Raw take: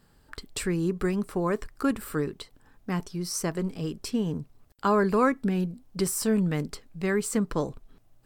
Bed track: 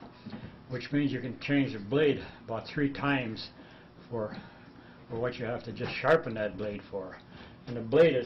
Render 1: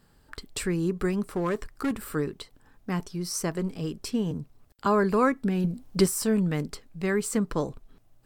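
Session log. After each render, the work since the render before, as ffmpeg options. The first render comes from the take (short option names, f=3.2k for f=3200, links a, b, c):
-filter_complex "[0:a]asettb=1/sr,asplit=3[a][b][c];[a]atrim=end=1.214[d];[b]atrim=start=1.21:end=2.09,asetpts=PTS-STARTPTS,afade=t=in:d=0.004:c=qsin,afade=t=out:st=0.876:d=0.004:c=qsin,volume=22.5dB,asoftclip=hard,volume=-22.5dB[e];[c]atrim=start=2.086[f];[d][e]acrossfade=d=0.004:c1=hsin:c2=qsin[g];[g][f]acrossfade=d=0.004:c1=qsin:c2=hsin,asettb=1/sr,asplit=3[h][i][j];[h]atrim=end=4.314[k];[i]atrim=start=4.31:end=4.86,asetpts=PTS-STARTPTS,afade=t=in:d=0.004:c=qsin,afade=t=out:st=0.546:d=0.004:c=qsin,acrossover=split=290|3000[l][m][n];[m]acompressor=threshold=-40dB:ratio=6:attack=3.2:release=140:knee=2.83:detection=peak[o];[l][o][n]amix=inputs=3:normalize=0[p];[j]atrim=start=4.856[q];[k][p]acrossfade=d=0.004:c1=hsin:c2=qsin[r];[r][q]acrossfade=d=0.004:c1=qsin:c2=hsin,asettb=1/sr,asplit=3[s][t][u];[s]atrim=end=5.644[v];[t]atrim=start=5.64:end=6.06,asetpts=PTS-STARTPTS,afade=t=in:d=0.004:c=qsin,afade=t=out:st=0.416:d=0.004:c=qsin,acontrast=57[w];[u]atrim=start=6.056[x];[v][w]acrossfade=d=0.004:c1=hsin:c2=qsin[y];[y][x]acrossfade=d=0.004:c1=qsin:c2=hsin"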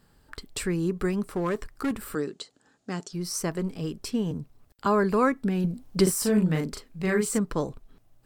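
-filter_complex "[0:a]asettb=1/sr,asplit=3[a][b][c];[a]atrim=end=2.154[d];[b]atrim=start=2.15:end=3.13,asetpts=PTS-STARTPTS,afade=t=in:d=0.004:c=qsin,afade=t=out:st=0.976:d=0.004:c=qsin,highpass=210,equalizer=f=1k:t=q:w=4:g=-7,equalizer=f=2.2k:t=q:w=4:g=-5,equalizer=f=4.4k:t=q:w=4:g=5,equalizer=f=7k:t=q:w=4:g=10,lowpass=f=9.1k:w=0.5412,lowpass=f=9.1k:w=1.3066[e];[c]atrim=start=3.126[f];[d][e]acrossfade=d=0.004:c1=hsin:c2=qsin[g];[g][f]acrossfade=d=0.004:c1=qsin:c2=hsin,asettb=1/sr,asplit=3[h][i][j];[h]atrim=end=6.034[k];[i]atrim=start=6.03:end=7.39,asetpts=PTS-STARTPTS,afade=t=in:d=0.004:c=qsin,afade=t=out:st=1.356:d=0.004:c=qsin,asplit=2[l][m];[m]adelay=38,volume=-3dB[n];[l][n]amix=inputs=2:normalize=0,atrim=end_sample=59976[o];[j]atrim=start=7.386[p];[k][o]acrossfade=d=0.004:c1=hsin:c2=qsin[q];[q][p]acrossfade=d=0.004:c1=qsin:c2=hsin"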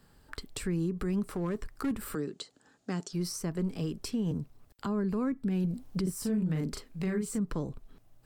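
-filter_complex "[0:a]acrossover=split=300[a][b];[b]acompressor=threshold=-36dB:ratio=12[c];[a][c]amix=inputs=2:normalize=0,alimiter=limit=-23.5dB:level=0:latency=1:release=92"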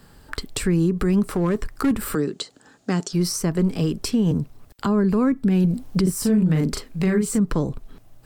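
-af "volume=11.5dB"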